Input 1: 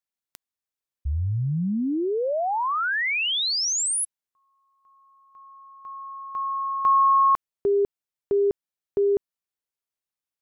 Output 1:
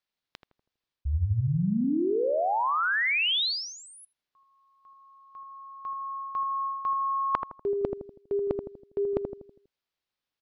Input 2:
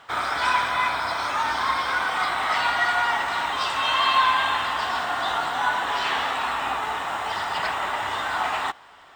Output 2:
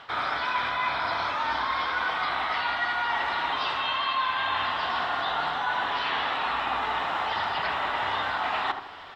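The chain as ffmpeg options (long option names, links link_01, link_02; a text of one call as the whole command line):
ffmpeg -i in.wav -filter_complex "[0:a]areverse,acompressor=threshold=-31dB:ratio=6:attack=15:release=394:knee=6:detection=peak,areverse,highshelf=frequency=6000:width_type=q:width=1.5:gain=-11.5,acrossover=split=4700[link_01][link_02];[link_02]acompressor=threshold=-56dB:ratio=4:attack=1:release=60[link_03];[link_01][link_03]amix=inputs=2:normalize=0,asplit=2[link_04][link_05];[link_05]adelay=81,lowpass=frequency=900:poles=1,volume=-5dB,asplit=2[link_06][link_07];[link_07]adelay=81,lowpass=frequency=900:poles=1,volume=0.48,asplit=2[link_08][link_09];[link_09]adelay=81,lowpass=frequency=900:poles=1,volume=0.48,asplit=2[link_10][link_11];[link_11]adelay=81,lowpass=frequency=900:poles=1,volume=0.48,asplit=2[link_12][link_13];[link_13]adelay=81,lowpass=frequency=900:poles=1,volume=0.48,asplit=2[link_14][link_15];[link_15]adelay=81,lowpass=frequency=900:poles=1,volume=0.48[link_16];[link_04][link_06][link_08][link_10][link_12][link_14][link_16]amix=inputs=7:normalize=0,volume=5dB" out.wav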